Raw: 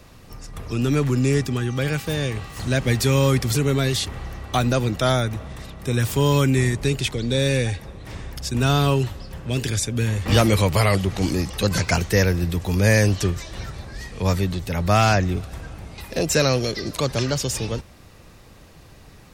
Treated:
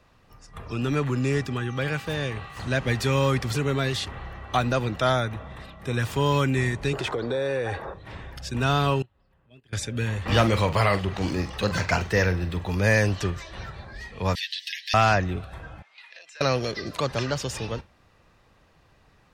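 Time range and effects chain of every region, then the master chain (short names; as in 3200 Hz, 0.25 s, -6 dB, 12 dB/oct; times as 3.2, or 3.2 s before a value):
6.93–7.94 band shelf 720 Hz +11.5 dB 2.6 oct + compressor 10:1, threshold -19 dBFS
9.02–9.73 gate -23 dBFS, range -15 dB + bell 6100 Hz -10.5 dB 0.88 oct + compressor 3:1, threshold -47 dBFS
10.32–12.7 median filter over 3 samples + doubler 44 ms -11 dB
14.35–14.94 brick-wall FIR high-pass 1600 Hz + band shelf 4000 Hz +10.5 dB 1.2 oct + comb 7.5 ms, depth 78%
15.82–16.41 HPF 1400 Hz + air absorption 73 m + compressor 12:1, threshold -38 dBFS
whole clip: notch 2200 Hz, Q 17; spectral noise reduction 8 dB; EQ curve 330 Hz 0 dB, 1000 Hz +6 dB, 2200 Hz +5 dB, 12000 Hz -8 dB; gain -5.5 dB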